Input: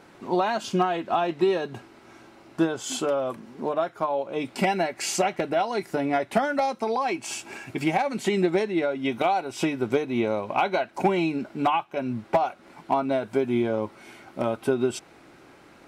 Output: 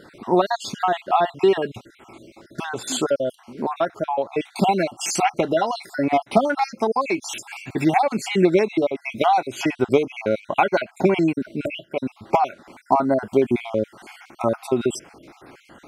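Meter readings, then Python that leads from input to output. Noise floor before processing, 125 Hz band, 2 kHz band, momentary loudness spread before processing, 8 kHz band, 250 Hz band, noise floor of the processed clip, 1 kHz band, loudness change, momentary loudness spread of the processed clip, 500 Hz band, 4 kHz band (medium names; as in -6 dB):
-52 dBFS, +4.0 dB, +3.0 dB, 7 LU, +4.0 dB, +3.5 dB, -55 dBFS, +4.5 dB, +4.0 dB, 10 LU, +4.0 dB, +3.5 dB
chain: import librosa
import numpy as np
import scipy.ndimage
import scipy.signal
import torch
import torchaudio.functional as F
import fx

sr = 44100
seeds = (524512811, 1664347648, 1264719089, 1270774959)

y = fx.spec_dropout(x, sr, seeds[0], share_pct=49)
y = F.gain(torch.from_numpy(y), 6.5).numpy()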